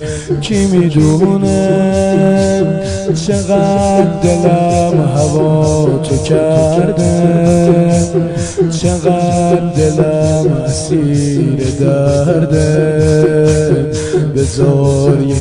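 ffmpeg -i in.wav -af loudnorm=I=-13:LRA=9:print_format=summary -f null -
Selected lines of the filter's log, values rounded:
Input Integrated:    -11.3 LUFS
Input True Peak:      -1.0 dBTP
Input LRA:             0.8 LU
Input Threshold:     -21.3 LUFS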